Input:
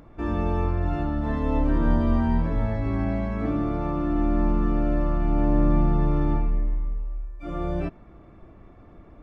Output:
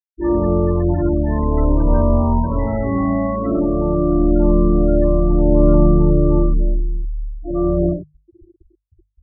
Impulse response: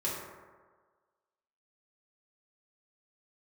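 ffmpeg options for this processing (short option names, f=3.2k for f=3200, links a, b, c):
-filter_complex "[1:a]atrim=start_sample=2205,afade=t=out:st=0.21:d=0.01,atrim=end_sample=9702[a];[0:a][a]afir=irnorm=-1:irlink=0,afftfilt=real='re*gte(hypot(re,im),0.0794)':imag='im*gte(hypot(re,im),0.0794)':win_size=1024:overlap=0.75,bandreject=f=50:t=h:w=6,bandreject=f=100:t=h:w=6,bandreject=f=150:t=h:w=6,volume=2.5dB"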